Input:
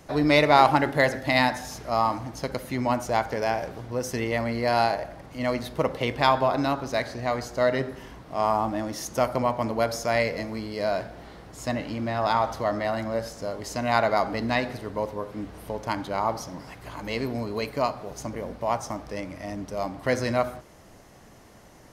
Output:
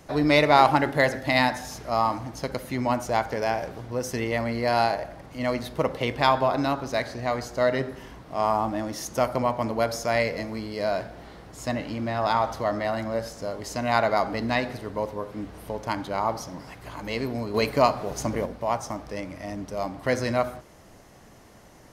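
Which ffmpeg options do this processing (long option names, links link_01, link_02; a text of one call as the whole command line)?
ffmpeg -i in.wav -filter_complex "[0:a]asettb=1/sr,asplit=3[link_01][link_02][link_03];[link_01]atrim=end=17.544[link_04];[link_02]atrim=start=17.54:end=18.46,asetpts=PTS-STARTPTS,afade=type=in:duration=0.004:curve=qsin,afade=type=out:start_time=0.916:duration=0.004:curve=qsin,acontrast=52[link_05];[link_03]atrim=start=18.456[link_06];[link_04][link_05]acrossfade=duration=0.004:curve1=hsin:curve2=qsin[link_07];[link_07][link_06]acrossfade=duration=0.004:curve1=qsin:curve2=hsin" out.wav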